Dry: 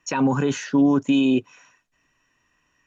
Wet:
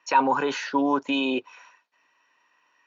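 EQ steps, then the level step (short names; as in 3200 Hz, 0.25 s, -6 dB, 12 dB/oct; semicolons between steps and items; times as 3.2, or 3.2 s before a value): speaker cabinet 430–5400 Hz, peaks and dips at 520 Hz +3 dB, 930 Hz +9 dB, 1400 Hz +3 dB, 2300 Hz +3 dB, 4300 Hz +5 dB; 0.0 dB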